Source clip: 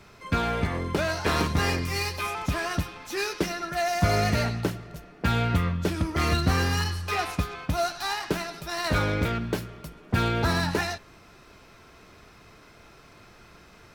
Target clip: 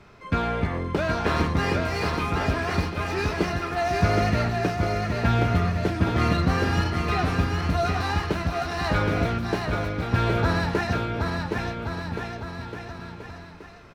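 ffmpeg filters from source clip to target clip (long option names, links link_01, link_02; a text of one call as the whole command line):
ffmpeg -i in.wav -filter_complex "[0:a]lowpass=frequency=2400:poles=1,asplit=2[link_01][link_02];[link_02]aecho=0:1:770|1424|1981|2454|2856:0.631|0.398|0.251|0.158|0.1[link_03];[link_01][link_03]amix=inputs=2:normalize=0,volume=1.5dB" out.wav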